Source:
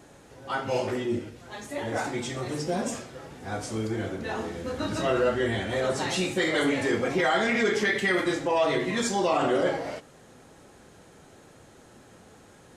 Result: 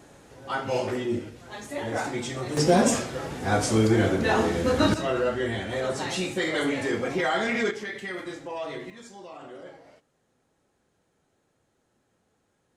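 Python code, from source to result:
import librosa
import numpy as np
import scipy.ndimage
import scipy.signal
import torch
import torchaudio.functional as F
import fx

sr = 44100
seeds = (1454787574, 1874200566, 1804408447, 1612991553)

y = fx.gain(x, sr, db=fx.steps((0.0, 0.5), (2.57, 9.5), (4.94, -1.5), (7.71, -10.0), (8.9, -19.0)))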